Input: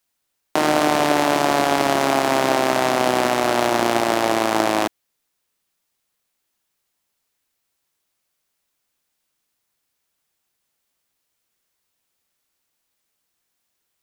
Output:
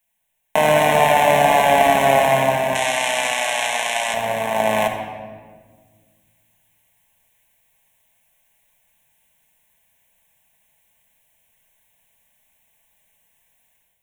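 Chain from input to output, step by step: 2.75–4.14 weighting filter ITU-R 468; AGC gain up to 9 dB; fixed phaser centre 1300 Hz, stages 6; reverb RT60 1.6 s, pre-delay 5 ms, DRR 2 dB; gain +3 dB

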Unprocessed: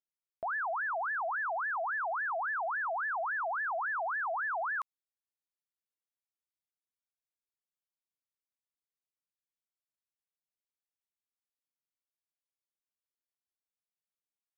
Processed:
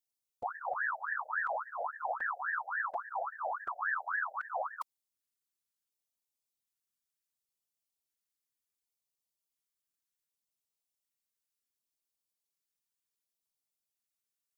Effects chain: LFO notch square 0.68 Hz 680–1600 Hz; tone controls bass +1 dB, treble +7 dB; whisperiser

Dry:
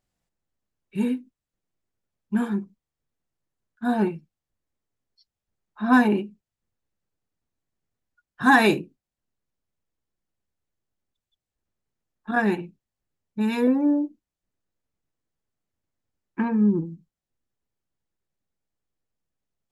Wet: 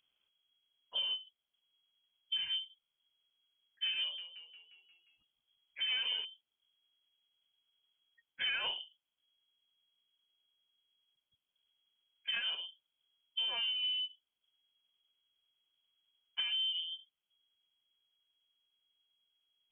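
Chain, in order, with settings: notch 1500 Hz, Q 8.5; compressor 10:1, threshold -32 dBFS, peak gain reduction 19.5 dB; soft clip -28 dBFS, distortion -19 dB; 4–6.25 frequency-shifting echo 0.177 s, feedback 56%, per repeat +47 Hz, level -10.5 dB; inverted band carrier 3300 Hz

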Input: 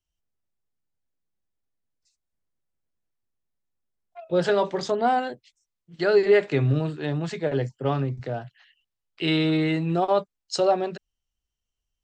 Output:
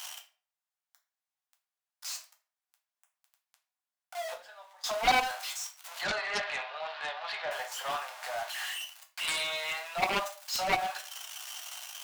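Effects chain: zero-crossing step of -30.5 dBFS; steep high-pass 670 Hz 48 dB/oct; 4.26–4.84 flipped gate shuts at -27 dBFS, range -24 dB; 6.01–7.51 steep low-pass 4400 Hz 36 dB/oct; shoebox room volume 31 m³, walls mixed, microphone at 0.43 m; added harmonics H 3 -19 dB, 7 -9 dB, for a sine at -8 dBFS; gain -7 dB

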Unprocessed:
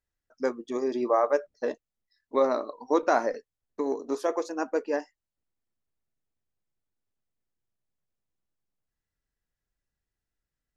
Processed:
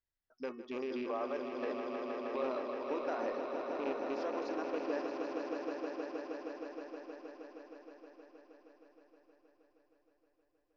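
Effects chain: rattling part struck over -35 dBFS, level -29 dBFS; elliptic low-pass 5300 Hz, stop band 60 dB; de-hum 367.8 Hz, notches 8; limiter -22 dBFS, peak gain reduction 11 dB; on a send: swelling echo 0.157 s, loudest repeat 5, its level -7.5 dB; on the sum: gain -7 dB

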